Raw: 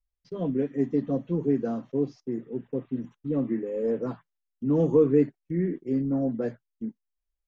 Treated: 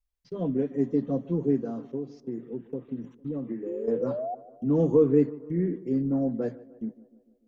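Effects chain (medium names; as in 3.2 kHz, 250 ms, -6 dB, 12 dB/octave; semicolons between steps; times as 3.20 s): 3.66–4.35 s: painted sound rise 330–750 Hz -31 dBFS; 1.56–3.88 s: compression 10:1, threshold -29 dBFS, peak gain reduction 9.5 dB; dynamic bell 2.2 kHz, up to -5 dB, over -50 dBFS, Q 0.92; tape echo 150 ms, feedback 64%, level -18 dB, low-pass 1.6 kHz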